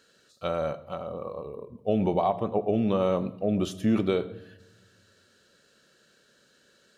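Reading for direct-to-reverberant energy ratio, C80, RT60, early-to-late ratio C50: 11.5 dB, 18.5 dB, 0.95 s, 17.0 dB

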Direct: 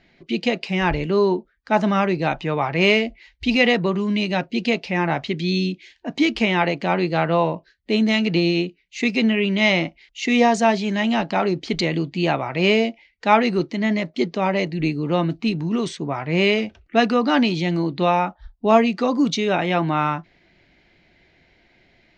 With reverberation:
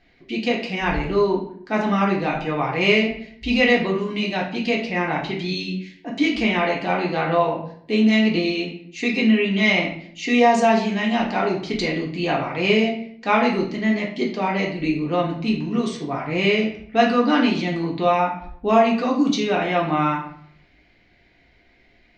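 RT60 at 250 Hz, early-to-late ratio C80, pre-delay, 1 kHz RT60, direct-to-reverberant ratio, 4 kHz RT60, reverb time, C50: 0.80 s, 10.0 dB, 3 ms, 0.60 s, −2.0 dB, 0.45 s, 0.60 s, 6.5 dB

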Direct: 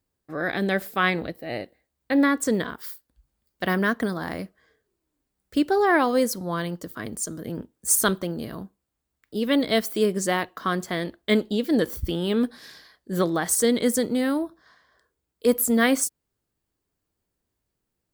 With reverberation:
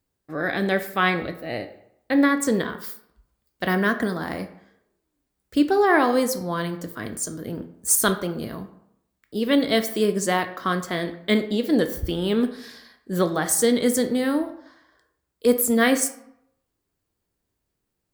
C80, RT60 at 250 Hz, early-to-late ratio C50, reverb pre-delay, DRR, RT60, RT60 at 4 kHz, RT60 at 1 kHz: 15.0 dB, 0.75 s, 12.0 dB, 9 ms, 8.0 dB, 0.75 s, 0.50 s, 0.80 s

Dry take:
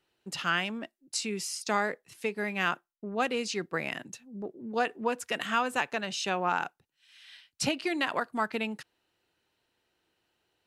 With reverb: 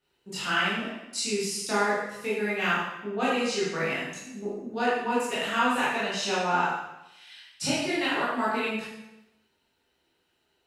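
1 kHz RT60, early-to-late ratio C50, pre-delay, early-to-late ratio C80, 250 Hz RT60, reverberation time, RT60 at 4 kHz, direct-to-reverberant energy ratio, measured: 0.90 s, −0.5 dB, 7 ms, 3.0 dB, 0.90 s, 0.95 s, 0.85 s, −9.5 dB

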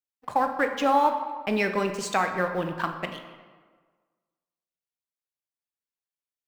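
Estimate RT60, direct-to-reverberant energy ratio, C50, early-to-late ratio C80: 1.5 s, 6.0 dB, 8.0 dB, 9.5 dB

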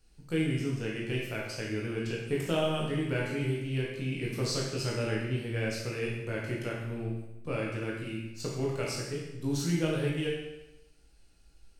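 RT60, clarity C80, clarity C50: 0.95 s, 4.5 dB, 1.0 dB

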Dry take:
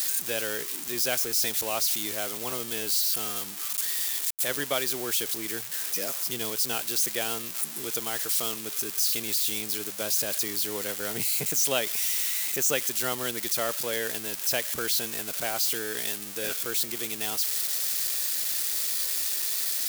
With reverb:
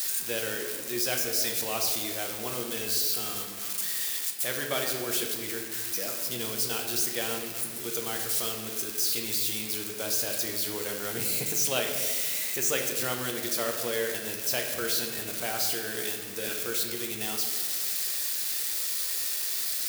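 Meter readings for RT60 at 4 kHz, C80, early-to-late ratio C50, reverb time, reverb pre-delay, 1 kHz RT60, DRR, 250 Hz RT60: 1.0 s, 6.5 dB, 5.0 dB, 1.6 s, 5 ms, 1.3 s, 1.5 dB, 2.2 s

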